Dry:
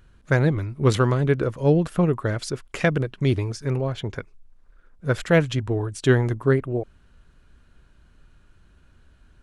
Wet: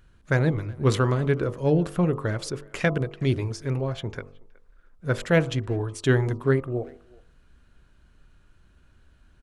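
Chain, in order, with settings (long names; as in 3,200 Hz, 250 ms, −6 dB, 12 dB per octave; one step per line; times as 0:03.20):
hum removal 48.15 Hz, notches 27
far-end echo of a speakerphone 370 ms, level −24 dB
level −2 dB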